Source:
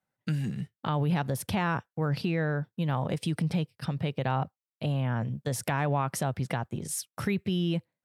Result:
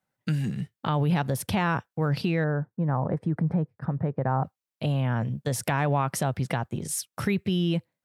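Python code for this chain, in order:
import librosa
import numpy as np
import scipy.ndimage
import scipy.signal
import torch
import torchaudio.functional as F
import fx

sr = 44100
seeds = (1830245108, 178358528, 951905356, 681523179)

y = fx.curve_eq(x, sr, hz=(1000.0, 1800.0, 2900.0), db=(0, -5, -28), at=(2.44, 4.44))
y = y * 10.0 ** (3.0 / 20.0)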